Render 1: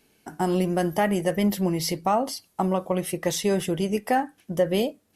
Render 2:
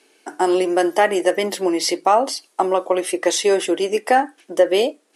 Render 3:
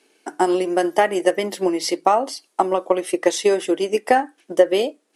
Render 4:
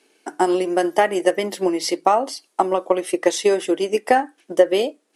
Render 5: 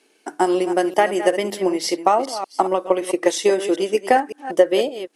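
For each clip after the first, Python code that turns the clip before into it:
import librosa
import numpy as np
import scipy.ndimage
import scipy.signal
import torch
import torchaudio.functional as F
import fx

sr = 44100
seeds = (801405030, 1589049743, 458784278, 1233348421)

y1 = scipy.signal.sosfilt(scipy.signal.ellip(3, 1.0, 40, [320.0, 9700.0], 'bandpass', fs=sr, output='sos'), x)
y1 = y1 * librosa.db_to_amplitude(8.5)
y2 = fx.low_shelf(y1, sr, hz=130.0, db=12.0)
y2 = fx.transient(y2, sr, attack_db=5, sustain_db=-2)
y2 = y2 * librosa.db_to_amplitude(-4.0)
y3 = y2
y4 = fx.reverse_delay(y3, sr, ms=188, wet_db=-11.5)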